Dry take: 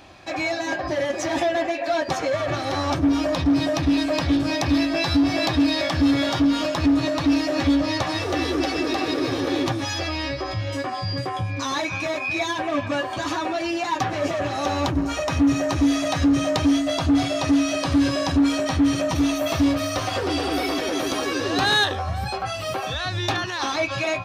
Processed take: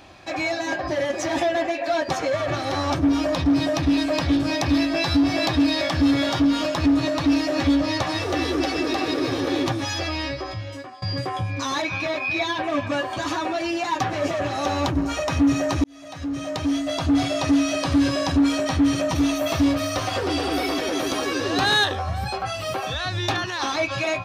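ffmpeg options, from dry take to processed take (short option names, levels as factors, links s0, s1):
-filter_complex "[0:a]asettb=1/sr,asplit=3[s0][s1][s2];[s0]atrim=end=11.824[s3];[s1]atrim=start=11.82:end=12.64,asetpts=PTS-STARTPTS,afade=t=in:d=0.004:c=qsin,afade=t=out:st=0.816:d=0.004:c=qsin,highshelf=f=5600:t=q:w=1.5:g=-6.5[s4];[s2]atrim=start=12.636[s5];[s3][s4]acrossfade=d=0.004:c1=hsin:c2=qsin[s6];[s6][s5]acrossfade=d=0.004:c1=qsin:c2=hsin,asplit=3[s7][s8][s9];[s7]atrim=end=11.02,asetpts=PTS-STARTPTS,afade=t=out:st=10.2:d=0.82:silence=0.133352[s10];[s8]atrim=start=11.02:end=15.84,asetpts=PTS-STARTPTS,afade=t=in:d=0.004:c=hsin:silence=0.133352,afade=t=out:st=4.816:d=0.004:c=hsin[s11];[s9]atrim=start=15.84,asetpts=PTS-STARTPTS,afade=t=in:d=1.41[s12];[s10][s11][s12]concat=n=3:v=0:a=1"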